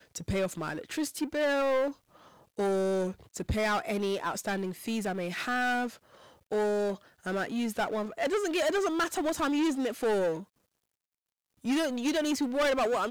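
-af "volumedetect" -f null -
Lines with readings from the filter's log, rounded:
mean_volume: -30.7 dB
max_volume: -23.5 dB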